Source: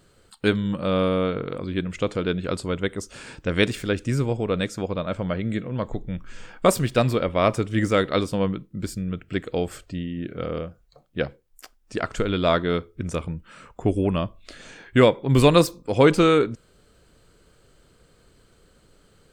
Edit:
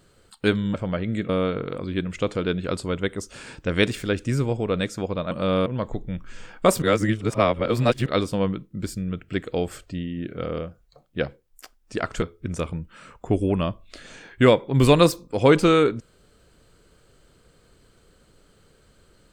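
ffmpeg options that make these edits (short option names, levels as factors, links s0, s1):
-filter_complex "[0:a]asplit=8[s0][s1][s2][s3][s4][s5][s6][s7];[s0]atrim=end=0.742[s8];[s1]atrim=start=5.108:end=5.662[s9];[s2]atrim=start=1.088:end=5.112[s10];[s3]atrim=start=0.738:end=1.092[s11];[s4]atrim=start=5.658:end=6.822[s12];[s5]atrim=start=6.818:end=8.062,asetpts=PTS-STARTPTS,areverse[s13];[s6]atrim=start=8.058:end=12.222[s14];[s7]atrim=start=12.768[s15];[s8][s9]acrossfade=d=0.004:c1=hsin:c2=hsin[s16];[s16][s10]acrossfade=d=0.004:c1=hsin:c2=hsin[s17];[s17][s11]acrossfade=d=0.004:c1=hsin:c2=hsin[s18];[s18][s12]acrossfade=d=0.004:c1=hsin:c2=hsin[s19];[s19][s13]acrossfade=d=0.004:c1=hsin:c2=hsin[s20];[s20][s14]acrossfade=d=0.004:c1=hsin:c2=hsin[s21];[s21][s15]acrossfade=d=0.004:c1=hsin:c2=hsin"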